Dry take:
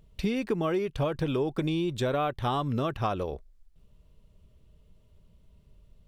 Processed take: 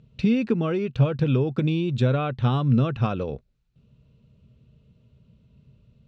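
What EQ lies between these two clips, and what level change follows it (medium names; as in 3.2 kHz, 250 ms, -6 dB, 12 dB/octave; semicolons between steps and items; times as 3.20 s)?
cabinet simulation 110–7100 Hz, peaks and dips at 130 Hz +10 dB, 230 Hz +9 dB, 490 Hz +6 dB, 1.4 kHz +7 dB, 2.6 kHz +9 dB, 4 kHz +6 dB; bass shelf 170 Hz +11.5 dB; bass shelf 390 Hz +3 dB; -4.0 dB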